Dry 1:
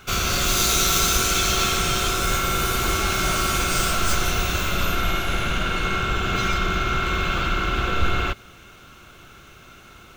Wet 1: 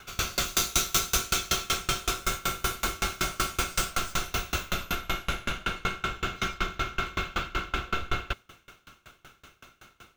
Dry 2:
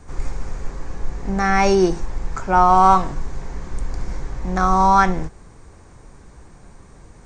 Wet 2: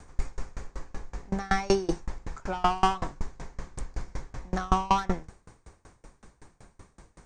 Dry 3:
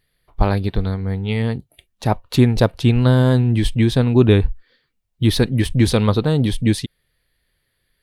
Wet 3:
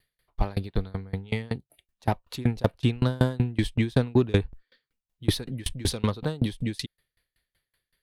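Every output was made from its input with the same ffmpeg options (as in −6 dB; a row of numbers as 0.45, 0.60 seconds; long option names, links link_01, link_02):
-filter_complex "[0:a]lowshelf=frequency=500:gain=-4.5,acrossover=split=400|4300[link_01][link_02][link_03];[link_02]asoftclip=type=tanh:threshold=-16.5dB[link_04];[link_01][link_04][link_03]amix=inputs=3:normalize=0,aeval=exprs='val(0)*pow(10,-28*if(lt(mod(5.3*n/s,1),2*abs(5.3)/1000),1-mod(5.3*n/s,1)/(2*abs(5.3)/1000),(mod(5.3*n/s,1)-2*abs(5.3)/1000)/(1-2*abs(5.3)/1000))/20)':channel_layout=same,volume=1.5dB"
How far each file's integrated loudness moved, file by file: −8.0, −13.0, −10.5 LU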